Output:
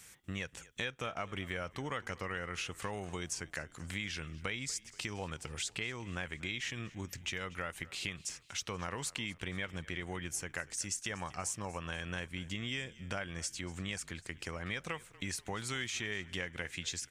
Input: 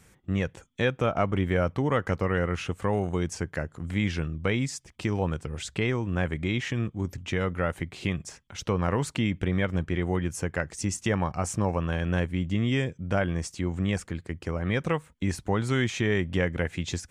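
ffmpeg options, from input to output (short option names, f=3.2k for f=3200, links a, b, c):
-filter_complex "[0:a]tiltshelf=f=1.3k:g=-9,acompressor=threshold=-37dB:ratio=3,asplit=2[a][b];[b]asplit=4[c][d][e][f];[c]adelay=240,afreqshift=-34,volume=-20.5dB[g];[d]adelay=480,afreqshift=-68,volume=-26dB[h];[e]adelay=720,afreqshift=-102,volume=-31.5dB[i];[f]adelay=960,afreqshift=-136,volume=-37dB[j];[g][h][i][j]amix=inputs=4:normalize=0[k];[a][k]amix=inputs=2:normalize=0,volume=-1dB"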